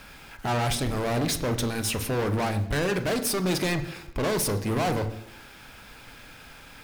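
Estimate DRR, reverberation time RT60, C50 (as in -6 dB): 8.5 dB, 0.85 s, 12.5 dB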